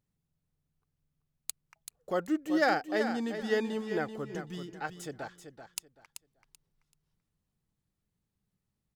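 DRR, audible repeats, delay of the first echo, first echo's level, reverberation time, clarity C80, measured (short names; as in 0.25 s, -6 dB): none, 3, 0.384 s, -9.0 dB, none, none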